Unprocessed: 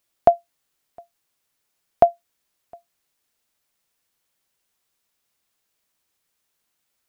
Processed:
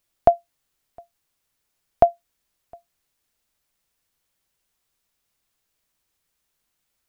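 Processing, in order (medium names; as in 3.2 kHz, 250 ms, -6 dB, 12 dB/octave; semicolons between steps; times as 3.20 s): bass shelf 88 Hz +12 dB; trim -1 dB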